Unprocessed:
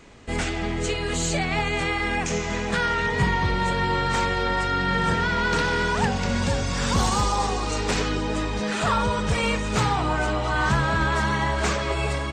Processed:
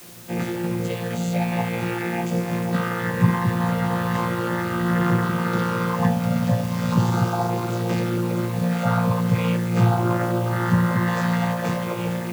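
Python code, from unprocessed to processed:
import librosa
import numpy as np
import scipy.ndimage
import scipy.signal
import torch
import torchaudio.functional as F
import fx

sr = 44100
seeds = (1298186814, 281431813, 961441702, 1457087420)

y = fx.chord_vocoder(x, sr, chord='bare fifth', root=46)
y = fx.high_shelf(y, sr, hz=4300.0, db=12.0, at=(11.07, 11.54))
y = fx.quant_dither(y, sr, seeds[0], bits=8, dither='triangular')
y = y * librosa.db_to_amplitude(3.5)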